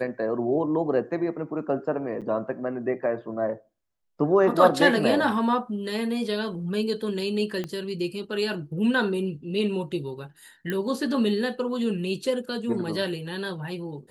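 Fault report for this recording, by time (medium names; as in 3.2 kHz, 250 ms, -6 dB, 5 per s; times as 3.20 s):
2.21–2.22 s: dropout 7.5 ms
7.64 s: pop -18 dBFS
10.70 s: pop -16 dBFS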